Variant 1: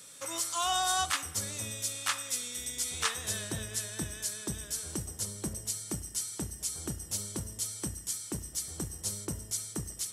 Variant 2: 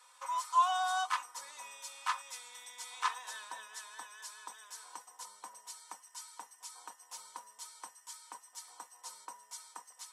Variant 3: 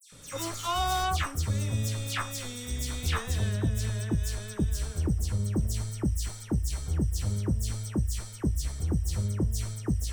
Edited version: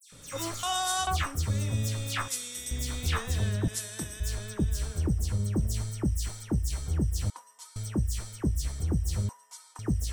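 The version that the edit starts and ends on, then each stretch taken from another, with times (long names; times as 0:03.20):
3
0:00.63–0:01.07: punch in from 1
0:02.28–0:02.71: punch in from 1
0:03.68–0:04.20: punch in from 1
0:07.30–0:07.76: punch in from 2
0:09.29–0:09.79: punch in from 2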